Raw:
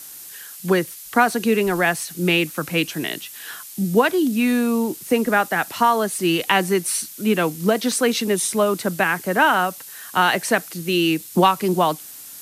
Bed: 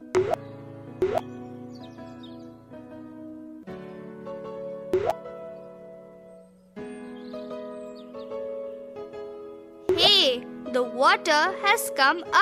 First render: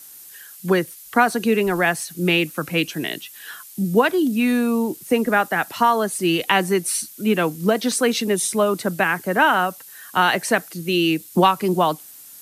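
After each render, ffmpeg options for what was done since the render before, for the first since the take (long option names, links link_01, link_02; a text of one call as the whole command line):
ffmpeg -i in.wav -af "afftdn=noise_reduction=6:noise_floor=-39" out.wav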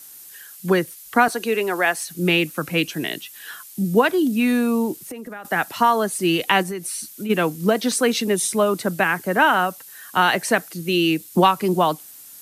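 ffmpeg -i in.wav -filter_complex "[0:a]asettb=1/sr,asplit=3[link_01][link_02][link_03];[link_01]atrim=end=1.284[link_04];[link_02]atrim=start=1.28:end=2.08,asetpts=PTS-STARTPTS,afade=type=in:duration=0.004:curve=qsin,afade=type=out:start_time=0.796:duration=0.004:curve=qsin,highpass=360[link_05];[link_03]atrim=start=2.076[link_06];[link_04][link_05]acrossfade=duration=0.004:curve1=hsin:curve2=qsin[link_07];[link_07][link_06]acrossfade=duration=0.004:curve1=qsin:curve2=hsin,asettb=1/sr,asplit=3[link_08][link_09][link_10];[link_08]atrim=end=4.934[link_11];[link_09]atrim=start=4.93:end=5.45,asetpts=PTS-STARTPTS,afade=type=in:duration=0.004:curve=qsin,afade=type=out:start_time=0.516:duration=0.004:curve=qsin,acompressor=threshold=-31dB:ratio=8:attack=3.2:release=140:knee=1:detection=peak[link_12];[link_10]atrim=start=5.446[link_13];[link_11][link_12]acrossfade=duration=0.004:curve1=hsin:curve2=qsin[link_14];[link_14][link_13]acrossfade=duration=0.004:curve1=qsin:curve2=hsin,asplit=3[link_15][link_16][link_17];[link_15]afade=type=out:start_time=6.62:duration=0.02[link_18];[link_16]acompressor=threshold=-25dB:ratio=6:attack=3.2:release=140:knee=1:detection=peak,afade=type=in:start_time=6.62:duration=0.02,afade=type=out:start_time=7.29:duration=0.02[link_19];[link_17]afade=type=in:start_time=7.29:duration=0.02[link_20];[link_18][link_19][link_20]amix=inputs=3:normalize=0" out.wav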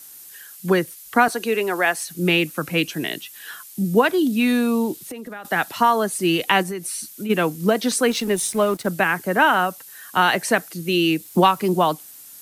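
ffmpeg -i in.wav -filter_complex "[0:a]asettb=1/sr,asplit=3[link_01][link_02][link_03];[link_01]atrim=end=4.144[link_04];[link_02]atrim=start=4.14:end=5.72,asetpts=PTS-STARTPTS,afade=type=in:duration=0.004:curve=qsin,afade=type=out:start_time=1.576:duration=0.004:curve=qsin,equalizer=frequency=3700:width_type=o:width=0.63:gain=5.5[link_05];[link_03]atrim=start=5.716[link_06];[link_04][link_05]acrossfade=duration=0.004:curve1=hsin:curve2=qsin[link_07];[link_07][link_06]acrossfade=duration=0.004:curve1=qsin:curve2=hsin,asettb=1/sr,asplit=3[link_08][link_09][link_10];[link_08]atrim=end=8.104[link_11];[link_09]atrim=start=8.1:end=8.87,asetpts=PTS-STARTPTS,afade=type=in:duration=0.004:curve=qsin,afade=type=out:start_time=0.766:duration=0.004:curve=qsin,aeval=exprs='sgn(val(0))*max(abs(val(0))-0.0119,0)':channel_layout=same[link_12];[link_10]atrim=start=8.866[link_13];[link_11][link_12]acrossfade=duration=0.004:curve1=hsin:curve2=qsin[link_14];[link_14][link_13]acrossfade=duration=0.004:curve1=qsin:curve2=hsin,asettb=1/sr,asplit=3[link_15][link_16][link_17];[link_15]atrim=end=11.254[link_18];[link_16]atrim=start=11.25:end=11.7,asetpts=PTS-STARTPTS,afade=type=in:duration=0.004:curve=qsin,afade=type=out:start_time=0.446:duration=0.004:curve=qsin,acrusher=bits=7:mix=0:aa=0.5[link_19];[link_17]atrim=start=11.696[link_20];[link_18][link_19]acrossfade=duration=0.004:curve1=hsin:curve2=qsin[link_21];[link_21][link_20]acrossfade=duration=0.004:curve1=qsin:curve2=hsin" out.wav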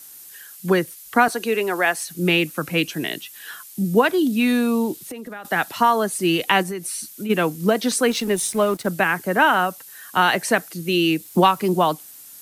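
ffmpeg -i in.wav -af anull out.wav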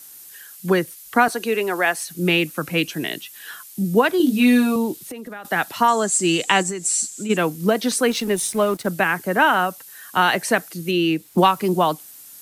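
ffmpeg -i in.wav -filter_complex "[0:a]asettb=1/sr,asplit=3[link_01][link_02][link_03];[link_01]atrim=end=4.184[link_04];[link_02]atrim=start=4.18:end=4.76,asetpts=PTS-STARTPTS,afade=type=in:duration=0.004:curve=qsin,afade=type=out:start_time=0.576:duration=0.004:curve=qsin,asplit=2[link_05][link_06];[link_06]adelay=20,volume=-2dB[link_07];[link_05][link_07]amix=inputs=2:normalize=0,atrim=end_sample=25578[link_08];[link_03]atrim=start=4.756[link_09];[link_04][link_08]acrossfade=duration=0.004:curve1=hsin:curve2=qsin[link_10];[link_10][link_09]acrossfade=duration=0.004:curve1=qsin:curve2=hsin,asettb=1/sr,asplit=3[link_11][link_12][link_13];[link_11]atrim=end=5.884[link_14];[link_12]atrim=start=5.88:end=7.37,asetpts=PTS-STARTPTS,afade=type=in:duration=0.004:curve=qsin,afade=type=out:start_time=1.486:duration=0.004:curve=qsin,lowpass=frequency=7500:width_type=q:width=9.8[link_15];[link_13]atrim=start=7.366[link_16];[link_14][link_15]acrossfade=duration=0.004:curve1=hsin:curve2=qsin[link_17];[link_17][link_16]acrossfade=duration=0.004:curve1=qsin:curve2=hsin,asettb=1/sr,asplit=3[link_18][link_19][link_20];[link_18]atrim=end=10.914[link_21];[link_19]atrim=start=10.91:end=11.38,asetpts=PTS-STARTPTS,afade=type=in:duration=0.004:curve=qsin,afade=type=out:start_time=0.466:duration=0.004:curve=qsin,highshelf=frequency=4200:gain=-8.5[link_22];[link_20]atrim=start=11.376[link_23];[link_21][link_22]acrossfade=duration=0.004:curve1=hsin:curve2=qsin[link_24];[link_24][link_23]acrossfade=duration=0.004:curve1=qsin:curve2=hsin" out.wav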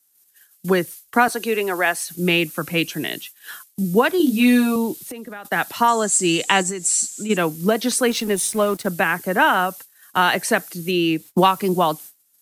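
ffmpeg -i in.wav -af "highshelf=frequency=6400:gain=3,agate=range=-23dB:threshold=-36dB:ratio=16:detection=peak" out.wav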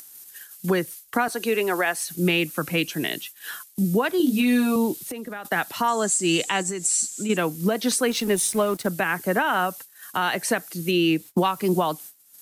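ffmpeg -i in.wav -af "alimiter=limit=-12dB:level=0:latency=1:release=273,acompressor=mode=upward:threshold=-31dB:ratio=2.5" out.wav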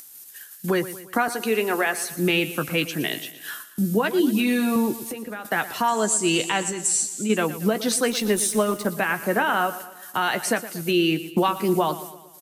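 ffmpeg -i in.wav -filter_complex "[0:a]asplit=2[link_01][link_02];[link_02]adelay=14,volume=-11dB[link_03];[link_01][link_03]amix=inputs=2:normalize=0,aecho=1:1:116|232|348|464|580:0.188|0.0961|0.049|0.025|0.0127" out.wav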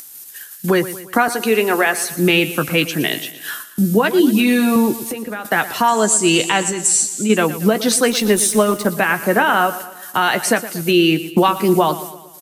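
ffmpeg -i in.wav -af "volume=7dB" out.wav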